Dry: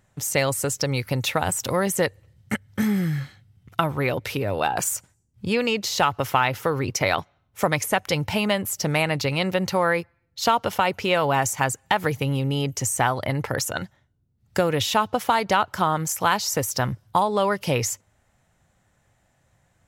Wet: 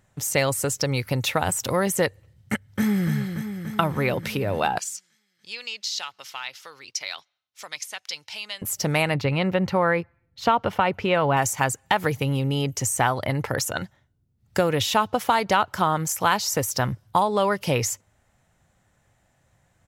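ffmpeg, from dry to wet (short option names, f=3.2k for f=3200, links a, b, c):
-filter_complex "[0:a]asplit=2[a][b];[b]afade=t=in:st=2.65:d=0.01,afade=t=out:st=3.12:d=0.01,aecho=0:1:290|580|870|1160|1450|1740|2030|2320|2610|2900|3190|3480:0.421697|0.316272|0.237204|0.177903|0.133427|0.100071|0.0750529|0.0562897|0.0422173|0.0316629|0.0237472|0.0178104[c];[a][c]amix=inputs=2:normalize=0,asettb=1/sr,asplit=3[d][e][f];[d]atrim=end=4.784[g];[e]atrim=start=4.78:end=8.62,asetpts=PTS-STARTPTS,afade=t=in:d=0.004:c=qsin,afade=t=out:st=3.836:d=0.004:c=qsin,bandpass=f=4.7k:t=q:w=1.6[h];[f]atrim=start=8.616[i];[g][h]acrossfade=d=0.004:c1=hsin:c2=qsin[j];[j][i]acrossfade=d=0.004:c1=qsin:c2=hsin,asettb=1/sr,asplit=3[k][l][m];[k]atrim=end=9.144[n];[l]atrim=start=9.14:end=11.37,asetpts=PTS-STARTPTS,afade=t=in:d=0.004:c=qsin,afade=t=out:st=2.226:d=0.004:c=qsin,bass=f=250:g=3,treble=f=4k:g=-14[o];[m]atrim=start=11.366[p];[n][o]acrossfade=d=0.004:c1=hsin:c2=qsin[q];[q][p]acrossfade=d=0.004:c1=qsin:c2=hsin"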